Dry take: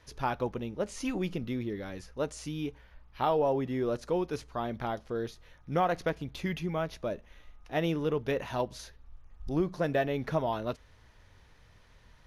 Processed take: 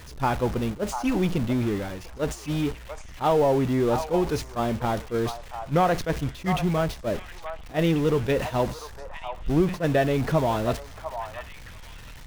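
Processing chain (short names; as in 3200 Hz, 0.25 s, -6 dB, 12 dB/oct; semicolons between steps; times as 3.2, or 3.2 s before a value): zero-crossing step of -35 dBFS; gate -34 dBFS, range -11 dB; low shelf 180 Hz +6 dB; on a send: delay with a stepping band-pass 0.696 s, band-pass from 930 Hz, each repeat 1.4 oct, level -6 dB; on the sum: attack slew limiter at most 310 dB/s; gain +4.5 dB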